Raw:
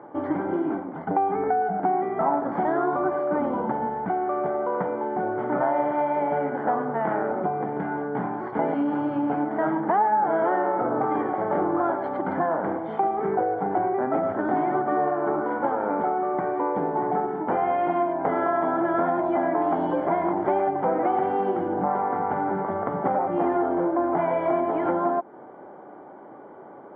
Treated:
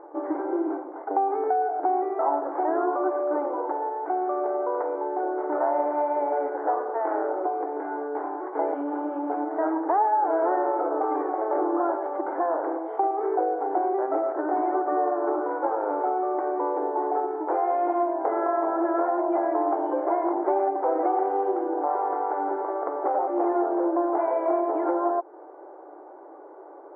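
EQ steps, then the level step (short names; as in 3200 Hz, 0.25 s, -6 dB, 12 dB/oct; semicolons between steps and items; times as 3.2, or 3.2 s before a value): brick-wall FIR high-pass 290 Hz; LPF 1200 Hz 12 dB/oct; 0.0 dB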